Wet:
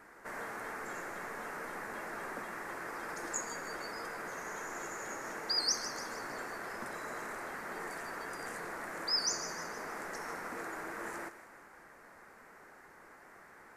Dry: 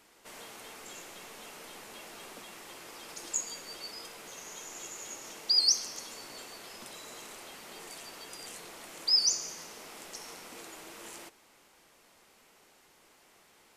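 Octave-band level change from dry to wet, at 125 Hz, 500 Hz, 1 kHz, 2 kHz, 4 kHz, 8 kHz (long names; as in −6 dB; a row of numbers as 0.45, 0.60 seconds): can't be measured, +6.0 dB, +8.5 dB, +8.5 dB, −7.5 dB, −6.0 dB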